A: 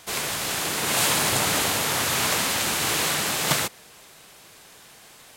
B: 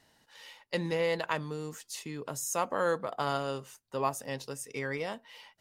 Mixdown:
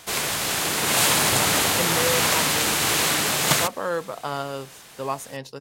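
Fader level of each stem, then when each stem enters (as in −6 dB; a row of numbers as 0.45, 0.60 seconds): +2.5, +2.5 decibels; 0.00, 1.05 seconds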